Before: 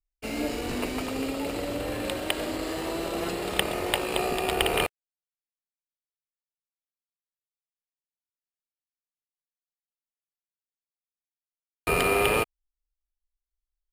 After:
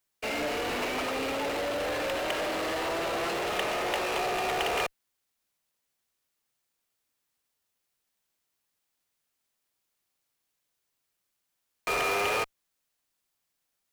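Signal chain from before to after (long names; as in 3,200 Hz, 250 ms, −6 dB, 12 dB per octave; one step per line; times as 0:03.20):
three-way crossover with the lows and the highs turned down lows −16 dB, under 450 Hz, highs −16 dB, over 3,400 Hz
in parallel at −9.5 dB: fuzz pedal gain 46 dB, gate −53 dBFS
on the sum: bit-depth reduction 12 bits, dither triangular
level −8.5 dB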